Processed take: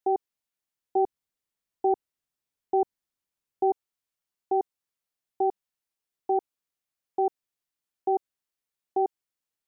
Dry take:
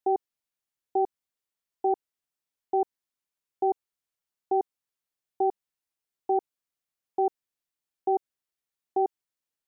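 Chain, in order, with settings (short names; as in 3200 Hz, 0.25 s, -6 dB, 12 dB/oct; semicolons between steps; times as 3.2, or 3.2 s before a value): 0.96–3.71 low shelf 260 Hz +6.5 dB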